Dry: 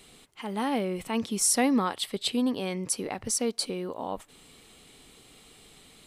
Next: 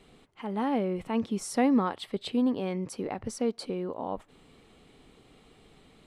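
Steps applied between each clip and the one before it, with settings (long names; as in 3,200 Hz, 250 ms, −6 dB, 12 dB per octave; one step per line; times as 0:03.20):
low-pass filter 1,200 Hz 6 dB per octave
level +1 dB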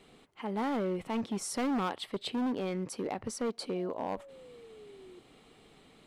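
gain into a clipping stage and back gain 27 dB
low-shelf EQ 120 Hz −8.5 dB
sound drawn into the spectrogram fall, 0:03.75–0:05.20, 350–710 Hz −52 dBFS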